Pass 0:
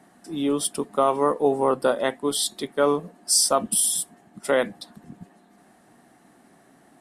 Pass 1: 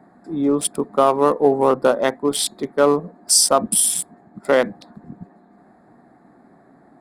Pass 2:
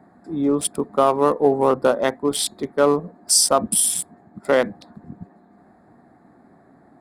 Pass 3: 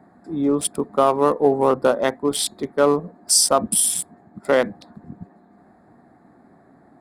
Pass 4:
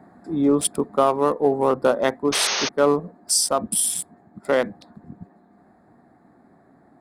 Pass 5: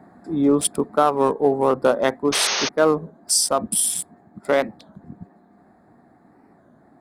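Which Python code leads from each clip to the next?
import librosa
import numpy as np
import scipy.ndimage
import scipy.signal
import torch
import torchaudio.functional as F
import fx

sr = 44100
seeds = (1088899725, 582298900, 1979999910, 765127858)

y1 = fx.wiener(x, sr, points=15)
y1 = y1 * librosa.db_to_amplitude(5.5)
y2 = fx.peak_eq(y1, sr, hz=82.0, db=7.5, octaves=0.89)
y2 = y2 * librosa.db_to_amplitude(-1.5)
y3 = y2
y4 = fx.spec_paint(y3, sr, seeds[0], shape='noise', start_s=2.32, length_s=0.37, low_hz=360.0, high_hz=6600.0, level_db=-22.0)
y4 = fx.rider(y4, sr, range_db=4, speed_s=0.5)
y4 = y4 * librosa.db_to_amplitude(-1.5)
y5 = fx.record_warp(y4, sr, rpm=33.33, depth_cents=160.0)
y5 = y5 * librosa.db_to_amplitude(1.0)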